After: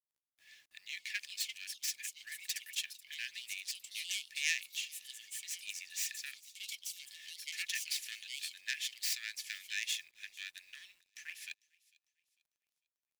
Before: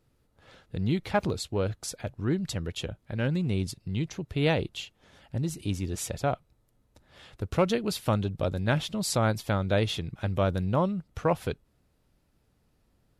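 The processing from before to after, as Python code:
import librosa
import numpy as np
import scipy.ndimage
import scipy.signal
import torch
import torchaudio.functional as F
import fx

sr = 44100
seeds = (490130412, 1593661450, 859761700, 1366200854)

p1 = fx.tracing_dist(x, sr, depth_ms=0.13)
p2 = fx.rider(p1, sr, range_db=4, speed_s=2.0)
p3 = p1 + (p2 * 10.0 ** (-2.0 / 20.0))
p4 = scipy.signal.sosfilt(scipy.signal.cheby1(6, 6, 1700.0, 'highpass', fs=sr, output='sos'), p3)
p5 = fx.quant_companded(p4, sr, bits=6)
p6 = p5 + fx.echo_wet_highpass(p5, sr, ms=449, feedback_pct=33, hz=3100.0, wet_db=-21.5, dry=0)
p7 = fx.echo_pitch(p6, sr, ms=581, semitones=4, count=3, db_per_echo=-6.0)
y = p7 * 10.0 ** (-2.5 / 20.0)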